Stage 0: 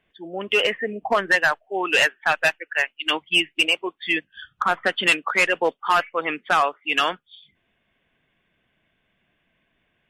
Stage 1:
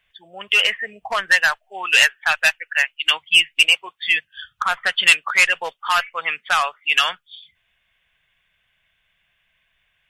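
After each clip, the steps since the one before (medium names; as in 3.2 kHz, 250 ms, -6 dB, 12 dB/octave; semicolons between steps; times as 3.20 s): amplifier tone stack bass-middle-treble 10-0-10; trim +8.5 dB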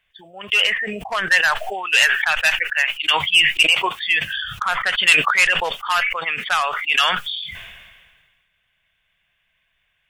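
decay stretcher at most 36 dB/s; trim -1.5 dB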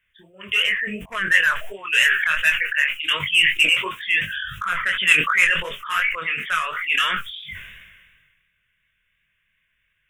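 chorus 2.8 Hz, delay 20 ms, depth 5.3 ms; static phaser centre 1.9 kHz, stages 4; trim +3 dB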